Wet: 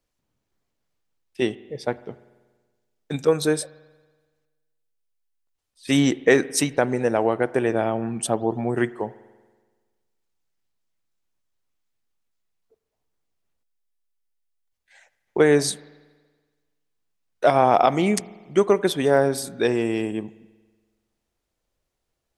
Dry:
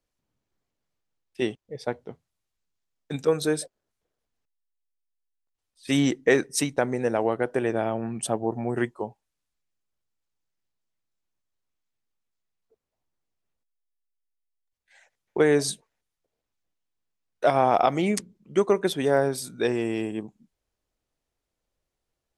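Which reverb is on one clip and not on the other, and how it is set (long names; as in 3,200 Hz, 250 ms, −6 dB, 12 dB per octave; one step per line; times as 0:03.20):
spring reverb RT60 1.4 s, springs 47 ms, chirp 40 ms, DRR 18.5 dB
level +3.5 dB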